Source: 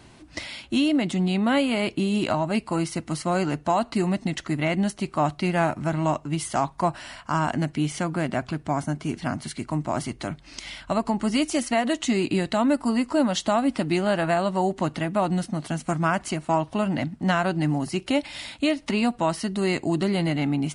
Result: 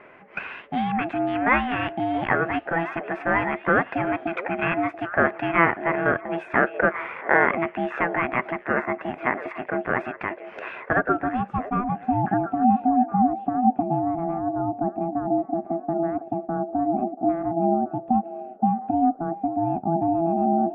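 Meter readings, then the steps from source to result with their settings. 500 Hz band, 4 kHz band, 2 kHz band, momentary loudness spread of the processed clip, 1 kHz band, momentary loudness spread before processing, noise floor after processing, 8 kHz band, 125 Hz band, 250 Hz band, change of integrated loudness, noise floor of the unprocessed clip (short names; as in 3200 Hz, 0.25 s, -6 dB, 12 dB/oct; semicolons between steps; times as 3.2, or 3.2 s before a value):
+1.0 dB, under -10 dB, +6.5 dB, 8 LU, +4.5 dB, 7 LU, -44 dBFS, under -35 dB, -5.5 dB, -1.5 dB, +1.0 dB, -51 dBFS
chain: low-pass sweep 1500 Hz -> 290 Hz, 10.73–12.44; ten-band EQ 125 Hz +3 dB, 500 Hz -9 dB, 1000 Hz +5 dB, 2000 Hz +9 dB, 4000 Hz -10 dB, 8000 Hz -3 dB; ring modulator 500 Hz; delay with a stepping band-pass 0.682 s, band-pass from 530 Hz, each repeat 1.4 oct, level -10 dB; gain +1 dB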